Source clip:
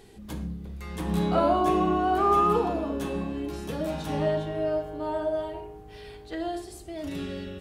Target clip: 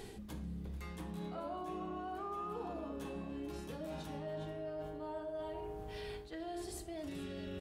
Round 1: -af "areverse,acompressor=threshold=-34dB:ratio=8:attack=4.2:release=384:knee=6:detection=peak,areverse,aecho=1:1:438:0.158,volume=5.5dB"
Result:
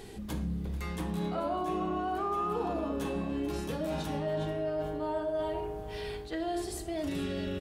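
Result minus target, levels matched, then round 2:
downward compressor: peak gain reduction −10 dB
-af "areverse,acompressor=threshold=-45.5dB:ratio=8:attack=4.2:release=384:knee=6:detection=peak,areverse,aecho=1:1:438:0.158,volume=5.5dB"

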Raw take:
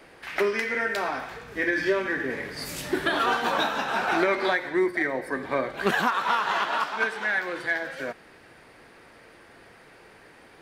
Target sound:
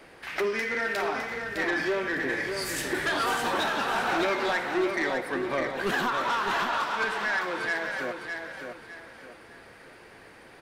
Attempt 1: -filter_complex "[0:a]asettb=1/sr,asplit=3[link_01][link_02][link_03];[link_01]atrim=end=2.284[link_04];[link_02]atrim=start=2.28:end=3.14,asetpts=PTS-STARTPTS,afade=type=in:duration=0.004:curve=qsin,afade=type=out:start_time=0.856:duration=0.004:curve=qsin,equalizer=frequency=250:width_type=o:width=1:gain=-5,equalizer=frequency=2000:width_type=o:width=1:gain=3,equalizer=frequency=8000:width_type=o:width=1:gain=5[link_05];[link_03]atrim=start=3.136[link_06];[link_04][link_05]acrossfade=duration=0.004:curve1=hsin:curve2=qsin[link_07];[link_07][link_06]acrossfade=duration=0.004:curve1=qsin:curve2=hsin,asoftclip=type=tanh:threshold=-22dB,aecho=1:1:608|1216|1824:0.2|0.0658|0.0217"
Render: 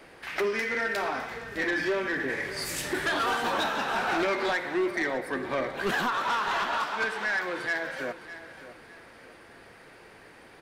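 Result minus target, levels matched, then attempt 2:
echo-to-direct −8 dB
-filter_complex "[0:a]asettb=1/sr,asplit=3[link_01][link_02][link_03];[link_01]atrim=end=2.284[link_04];[link_02]atrim=start=2.28:end=3.14,asetpts=PTS-STARTPTS,afade=type=in:duration=0.004:curve=qsin,afade=type=out:start_time=0.856:duration=0.004:curve=qsin,equalizer=frequency=250:width_type=o:width=1:gain=-5,equalizer=frequency=2000:width_type=o:width=1:gain=3,equalizer=frequency=8000:width_type=o:width=1:gain=5[link_05];[link_03]atrim=start=3.136[link_06];[link_04][link_05]acrossfade=duration=0.004:curve1=hsin:curve2=qsin[link_07];[link_07][link_06]acrossfade=duration=0.004:curve1=qsin:curve2=hsin,asoftclip=type=tanh:threshold=-22dB,aecho=1:1:608|1216|1824|2432:0.501|0.165|0.0546|0.018"

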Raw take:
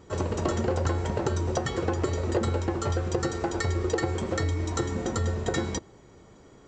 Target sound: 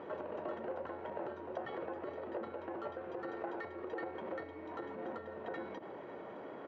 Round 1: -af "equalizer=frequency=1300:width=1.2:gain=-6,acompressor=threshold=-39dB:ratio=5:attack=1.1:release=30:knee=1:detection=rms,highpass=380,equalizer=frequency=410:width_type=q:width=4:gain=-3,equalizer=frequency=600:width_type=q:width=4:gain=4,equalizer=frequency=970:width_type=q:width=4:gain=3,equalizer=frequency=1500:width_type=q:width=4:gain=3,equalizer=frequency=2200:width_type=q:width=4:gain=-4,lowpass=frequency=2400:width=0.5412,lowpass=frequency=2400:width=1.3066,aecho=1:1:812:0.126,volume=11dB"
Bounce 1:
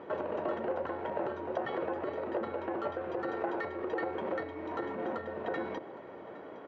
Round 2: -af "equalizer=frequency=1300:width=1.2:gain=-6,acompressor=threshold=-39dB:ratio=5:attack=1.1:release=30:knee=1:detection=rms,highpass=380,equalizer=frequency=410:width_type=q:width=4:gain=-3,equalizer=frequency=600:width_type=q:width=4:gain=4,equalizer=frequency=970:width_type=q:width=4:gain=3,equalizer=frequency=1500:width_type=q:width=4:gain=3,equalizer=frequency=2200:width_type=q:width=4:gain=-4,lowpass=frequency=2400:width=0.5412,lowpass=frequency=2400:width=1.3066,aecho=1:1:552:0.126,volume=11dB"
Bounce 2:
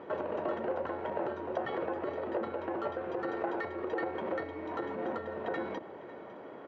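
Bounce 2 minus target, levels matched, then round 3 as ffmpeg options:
downward compressor: peak gain reduction −7 dB
-af "equalizer=frequency=1300:width=1.2:gain=-6,acompressor=threshold=-48dB:ratio=5:attack=1.1:release=30:knee=1:detection=rms,highpass=380,equalizer=frequency=410:width_type=q:width=4:gain=-3,equalizer=frequency=600:width_type=q:width=4:gain=4,equalizer=frequency=970:width_type=q:width=4:gain=3,equalizer=frequency=1500:width_type=q:width=4:gain=3,equalizer=frequency=2200:width_type=q:width=4:gain=-4,lowpass=frequency=2400:width=0.5412,lowpass=frequency=2400:width=1.3066,aecho=1:1:552:0.126,volume=11dB"

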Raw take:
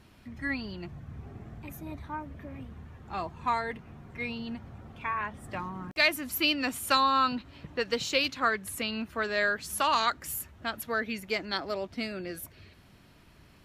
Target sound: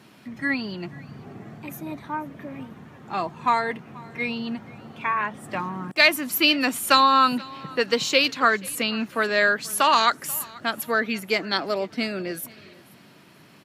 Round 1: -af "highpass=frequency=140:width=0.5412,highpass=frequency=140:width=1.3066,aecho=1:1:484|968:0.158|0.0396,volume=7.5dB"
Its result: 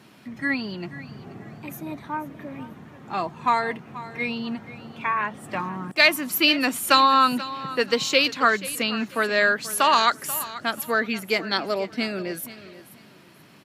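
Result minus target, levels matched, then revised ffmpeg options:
echo-to-direct +7 dB
-af "highpass=frequency=140:width=0.5412,highpass=frequency=140:width=1.3066,aecho=1:1:484|968:0.0708|0.0177,volume=7.5dB"

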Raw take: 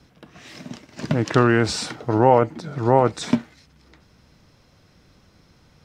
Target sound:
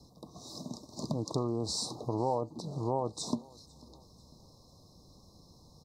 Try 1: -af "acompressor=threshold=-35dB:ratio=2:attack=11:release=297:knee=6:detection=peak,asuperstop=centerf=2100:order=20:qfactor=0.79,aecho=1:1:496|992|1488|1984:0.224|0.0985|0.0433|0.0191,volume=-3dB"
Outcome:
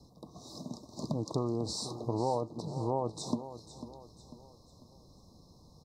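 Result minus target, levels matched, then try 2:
echo-to-direct +12 dB; 4,000 Hz band −2.5 dB
-af "acompressor=threshold=-35dB:ratio=2:attack=11:release=297:knee=6:detection=peak,asuperstop=centerf=2100:order=20:qfactor=0.79,highshelf=frequency=2100:gain=4,aecho=1:1:496|992|1488:0.0562|0.0247|0.0109,volume=-3dB"

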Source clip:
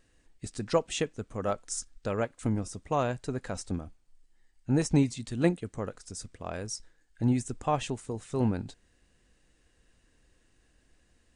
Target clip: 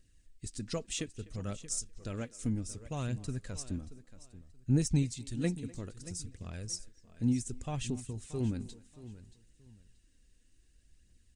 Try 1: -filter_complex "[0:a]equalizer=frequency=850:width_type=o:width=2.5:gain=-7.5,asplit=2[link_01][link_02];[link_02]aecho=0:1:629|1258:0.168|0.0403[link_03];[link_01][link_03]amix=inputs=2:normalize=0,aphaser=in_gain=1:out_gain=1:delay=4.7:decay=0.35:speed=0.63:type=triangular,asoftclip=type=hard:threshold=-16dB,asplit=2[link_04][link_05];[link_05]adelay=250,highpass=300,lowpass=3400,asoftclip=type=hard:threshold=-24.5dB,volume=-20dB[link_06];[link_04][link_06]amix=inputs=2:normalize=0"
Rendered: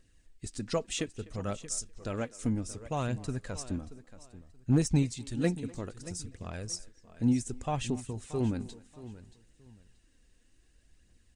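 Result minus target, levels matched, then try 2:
1,000 Hz band +6.5 dB
-filter_complex "[0:a]equalizer=frequency=850:width_type=o:width=2.5:gain=-17.5,asplit=2[link_01][link_02];[link_02]aecho=0:1:629|1258:0.168|0.0403[link_03];[link_01][link_03]amix=inputs=2:normalize=0,aphaser=in_gain=1:out_gain=1:delay=4.7:decay=0.35:speed=0.63:type=triangular,asoftclip=type=hard:threshold=-16dB,asplit=2[link_04][link_05];[link_05]adelay=250,highpass=300,lowpass=3400,asoftclip=type=hard:threshold=-24.5dB,volume=-20dB[link_06];[link_04][link_06]amix=inputs=2:normalize=0"

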